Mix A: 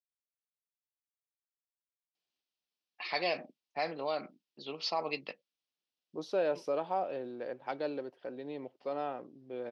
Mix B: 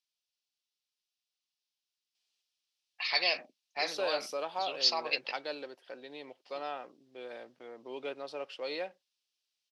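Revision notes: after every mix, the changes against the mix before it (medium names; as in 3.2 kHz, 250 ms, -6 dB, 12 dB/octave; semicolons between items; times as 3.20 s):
second voice: entry -2.35 s; master: add tilt EQ +4.5 dB/octave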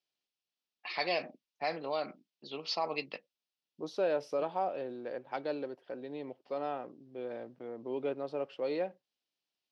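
first voice: entry -2.15 s; master: add tilt EQ -4.5 dB/octave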